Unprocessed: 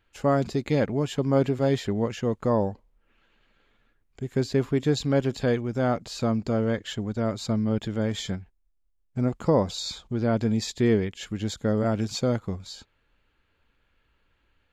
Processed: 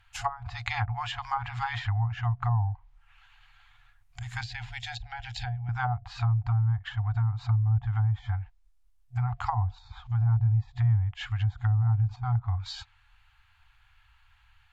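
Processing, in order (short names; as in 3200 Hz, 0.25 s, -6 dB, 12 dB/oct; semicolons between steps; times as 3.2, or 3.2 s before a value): FFT band-reject 120–710 Hz; treble ducked by the level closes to 420 Hz, closed at -28.5 dBFS; 4.41–5.69 fixed phaser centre 470 Hz, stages 4; gain +7.5 dB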